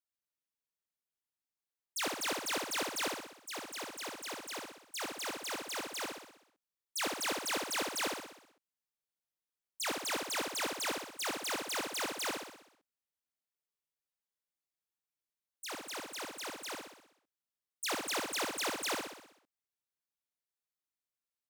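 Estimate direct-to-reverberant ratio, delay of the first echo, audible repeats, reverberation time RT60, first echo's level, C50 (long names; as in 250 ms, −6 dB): no reverb audible, 63 ms, 7, no reverb audible, −4.0 dB, no reverb audible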